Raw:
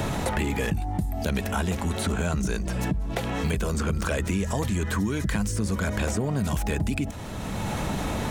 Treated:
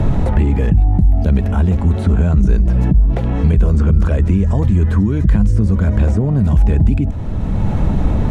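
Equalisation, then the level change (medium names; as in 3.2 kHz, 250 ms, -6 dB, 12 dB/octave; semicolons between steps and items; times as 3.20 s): tilt EQ -4 dB/octave; treble shelf 12 kHz -5.5 dB; +1.5 dB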